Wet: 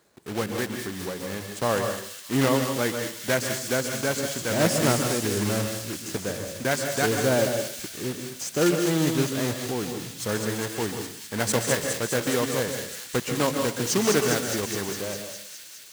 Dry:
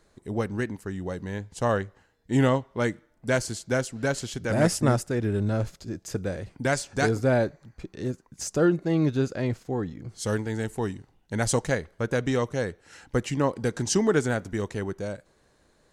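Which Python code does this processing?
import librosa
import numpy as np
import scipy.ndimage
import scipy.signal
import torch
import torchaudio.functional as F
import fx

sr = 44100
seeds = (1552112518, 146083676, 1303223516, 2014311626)

y = fx.block_float(x, sr, bits=3)
y = scipy.signal.sosfilt(scipy.signal.butter(2, 93.0, 'highpass', fs=sr, output='sos'), y)
y = fx.low_shelf(y, sr, hz=150.0, db=-5.0)
y = fx.echo_wet_highpass(y, sr, ms=205, feedback_pct=77, hz=3600.0, wet_db=-3.0)
y = fx.rev_plate(y, sr, seeds[0], rt60_s=0.55, hf_ratio=0.85, predelay_ms=120, drr_db=5.0)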